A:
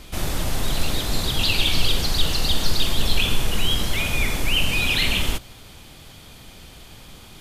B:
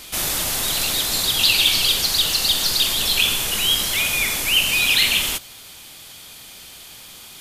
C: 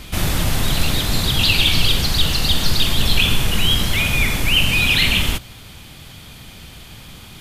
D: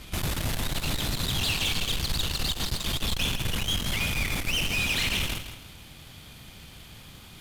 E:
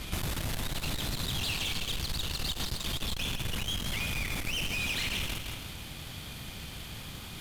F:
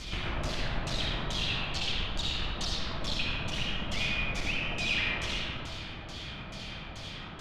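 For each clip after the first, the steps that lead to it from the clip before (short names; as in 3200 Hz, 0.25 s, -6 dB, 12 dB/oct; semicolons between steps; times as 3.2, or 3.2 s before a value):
tilt +3 dB/oct; in parallel at +1 dB: vocal rider within 3 dB 2 s; on the sum: gain -6 dB
tone controls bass +14 dB, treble -9 dB; gain +3 dB
tube stage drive 19 dB, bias 0.65; lo-fi delay 0.163 s, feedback 35%, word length 9-bit, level -10 dB; gain -4.5 dB
compressor 6:1, threshold -35 dBFS, peak gain reduction 11.5 dB; gain +4.5 dB
LFO low-pass saw down 2.3 Hz 570–6700 Hz; reverb RT60 1.6 s, pre-delay 30 ms, DRR -2.5 dB; gain -3.5 dB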